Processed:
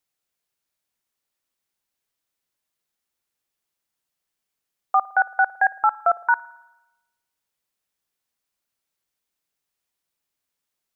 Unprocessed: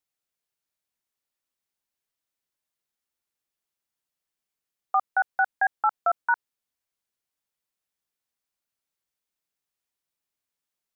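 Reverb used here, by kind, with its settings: spring tank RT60 1 s, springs 54 ms, DRR 19.5 dB; gain +4.5 dB

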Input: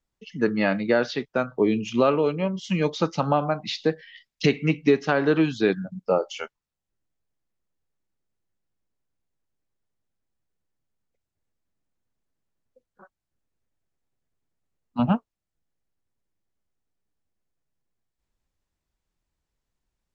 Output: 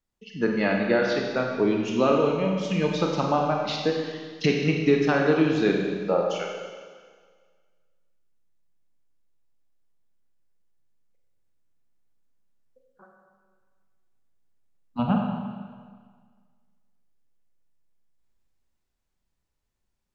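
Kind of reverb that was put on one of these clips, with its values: Schroeder reverb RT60 1.7 s, combs from 31 ms, DRR 0.5 dB; gain -2.5 dB

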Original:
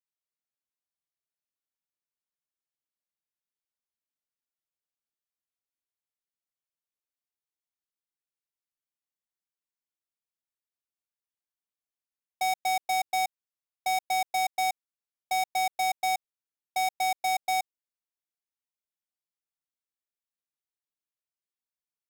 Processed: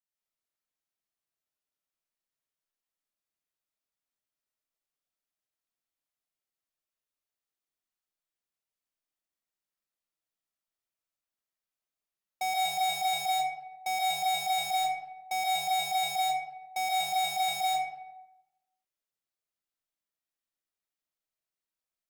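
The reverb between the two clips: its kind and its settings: digital reverb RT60 0.99 s, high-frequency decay 0.6×, pre-delay 95 ms, DRR -5 dB; gain -4 dB

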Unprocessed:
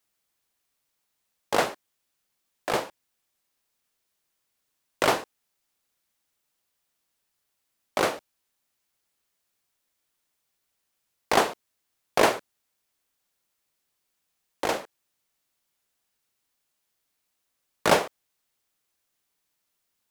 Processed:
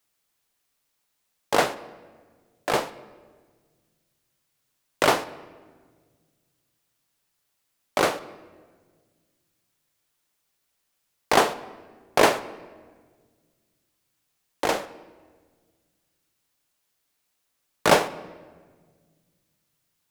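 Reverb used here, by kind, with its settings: shoebox room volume 1700 m³, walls mixed, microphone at 0.36 m; gain +2.5 dB

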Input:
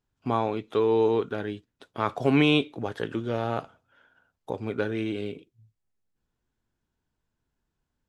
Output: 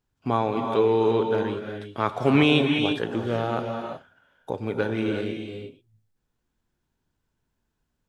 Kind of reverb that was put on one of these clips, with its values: non-linear reverb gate 0.39 s rising, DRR 4 dB; gain +2 dB

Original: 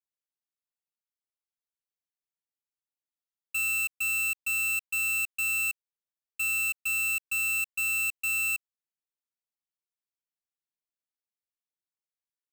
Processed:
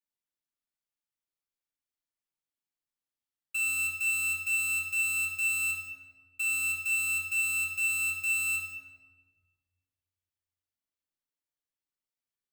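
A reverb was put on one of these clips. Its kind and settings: shoebox room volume 1200 m³, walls mixed, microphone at 2.5 m; gain -5.5 dB

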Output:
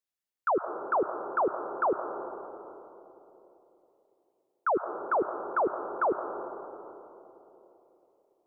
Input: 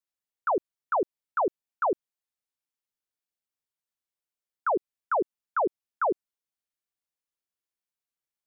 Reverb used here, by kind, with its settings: digital reverb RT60 3.4 s, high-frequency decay 0.25×, pre-delay 65 ms, DRR 7.5 dB; gain -1 dB

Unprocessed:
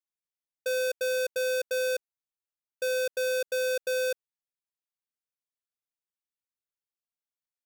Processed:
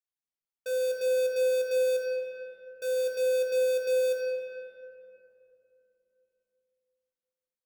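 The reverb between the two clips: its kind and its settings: shoebox room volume 150 m³, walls hard, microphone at 0.49 m; gain -7 dB

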